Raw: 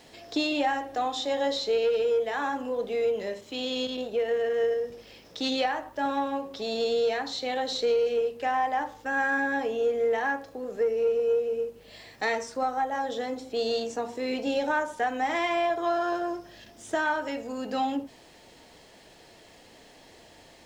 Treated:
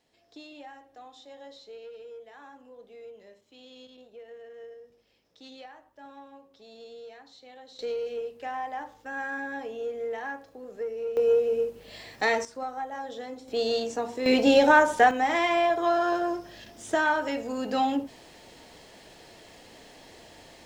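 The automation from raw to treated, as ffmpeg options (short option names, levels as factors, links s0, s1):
-af "asetnsamples=n=441:p=0,asendcmd='7.79 volume volume -7.5dB;11.17 volume volume 3dB;12.45 volume volume -6.5dB;13.48 volume volume 1dB;14.26 volume volume 9dB;15.11 volume volume 2.5dB',volume=0.106"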